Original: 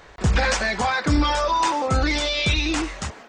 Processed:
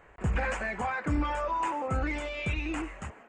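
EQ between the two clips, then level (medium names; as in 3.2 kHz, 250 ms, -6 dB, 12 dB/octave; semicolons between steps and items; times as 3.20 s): high-order bell 4.5 kHz -15.5 dB 1 oct; treble shelf 6 kHz -8 dB; -9.0 dB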